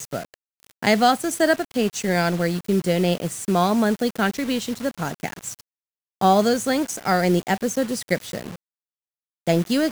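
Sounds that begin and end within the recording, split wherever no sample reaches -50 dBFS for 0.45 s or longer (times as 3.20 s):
6.21–8.56 s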